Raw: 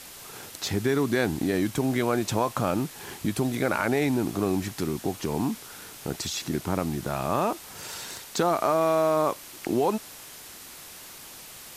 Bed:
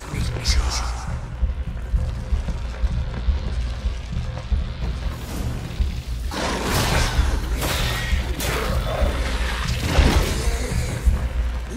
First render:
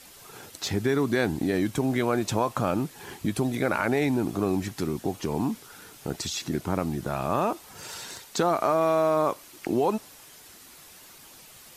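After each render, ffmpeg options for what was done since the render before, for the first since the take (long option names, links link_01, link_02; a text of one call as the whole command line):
ffmpeg -i in.wav -af "afftdn=noise_reduction=7:noise_floor=-45" out.wav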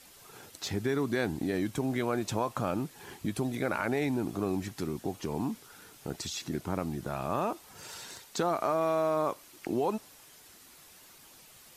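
ffmpeg -i in.wav -af "volume=-5.5dB" out.wav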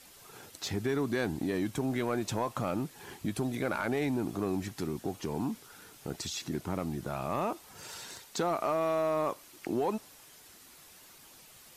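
ffmpeg -i in.wav -af "asoftclip=type=tanh:threshold=-20dB" out.wav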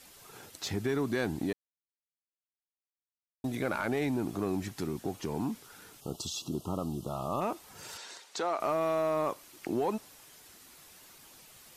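ffmpeg -i in.wav -filter_complex "[0:a]asplit=3[link_01][link_02][link_03];[link_01]afade=type=out:start_time=6:duration=0.02[link_04];[link_02]asuperstop=centerf=1900:order=20:qfactor=1.4,afade=type=in:start_time=6:duration=0.02,afade=type=out:start_time=7.4:duration=0.02[link_05];[link_03]afade=type=in:start_time=7.4:duration=0.02[link_06];[link_04][link_05][link_06]amix=inputs=3:normalize=0,asettb=1/sr,asplit=3[link_07][link_08][link_09];[link_07]atrim=end=7.974[link_10];[link_08]atrim=start=7.97:end=8.6,asetpts=PTS-STARTPTS,afade=type=in:duration=0.004:curve=qsin,afade=type=out:start_time=0.626:duration=0.004:curve=qsin,highpass=410,lowpass=7400[link_11];[link_09]atrim=start=8.596[link_12];[link_10][link_11]acrossfade=duration=0.004:curve1=hsin:curve2=qsin[link_13];[link_13][link_12]acrossfade=duration=0.004:curve1=qsin:curve2=hsin,asplit=3[link_14][link_15][link_16];[link_14]atrim=end=1.53,asetpts=PTS-STARTPTS,afade=type=out:start_time=1.526:duration=0.004:curve=hsin[link_17];[link_15]atrim=start=1.53:end=3.44,asetpts=PTS-STARTPTS,volume=0[link_18];[link_16]atrim=start=3.44,asetpts=PTS-STARTPTS,afade=type=in:duration=0.004:curve=hsin[link_19];[link_17][link_18][link_19]concat=n=3:v=0:a=1" out.wav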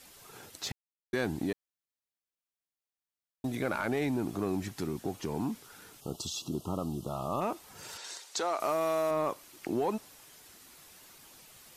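ffmpeg -i in.wav -filter_complex "[0:a]asettb=1/sr,asplit=3[link_01][link_02][link_03];[link_01]atrim=end=8.044[link_04];[link_02]atrim=start=8.04:end=9.11,asetpts=PTS-STARTPTS,afade=type=in:duration=0.004:curve=qsin,afade=type=out:start_time=1.066:duration=0.004:curve=qsin,bass=frequency=250:gain=-5,treble=frequency=4000:gain=7[link_05];[link_03]atrim=start=9.106[link_06];[link_04][link_05]acrossfade=duration=0.004:curve1=hsin:curve2=qsin[link_07];[link_07][link_06]acrossfade=duration=0.004:curve1=qsin:curve2=hsin,asplit=3[link_08][link_09][link_10];[link_08]atrim=end=0.72,asetpts=PTS-STARTPTS,afade=type=out:start_time=0.716:duration=0.004:curve=hsin[link_11];[link_09]atrim=start=0.72:end=1.13,asetpts=PTS-STARTPTS,volume=0[link_12];[link_10]atrim=start=1.13,asetpts=PTS-STARTPTS,afade=type=in:duration=0.004:curve=hsin[link_13];[link_11][link_12][link_13]concat=n=3:v=0:a=1" out.wav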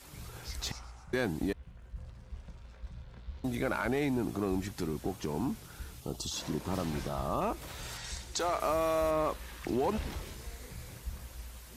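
ffmpeg -i in.wav -i bed.wav -filter_complex "[1:a]volume=-22.5dB[link_01];[0:a][link_01]amix=inputs=2:normalize=0" out.wav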